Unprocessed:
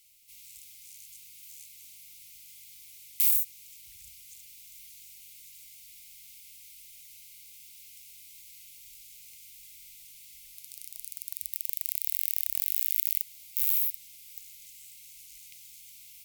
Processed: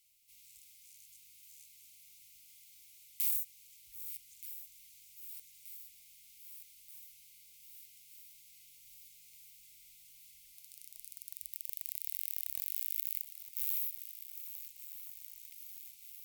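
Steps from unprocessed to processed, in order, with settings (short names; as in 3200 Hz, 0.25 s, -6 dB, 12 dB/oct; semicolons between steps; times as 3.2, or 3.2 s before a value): regenerating reverse delay 0.614 s, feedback 80%, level -12.5 dB; gain -9 dB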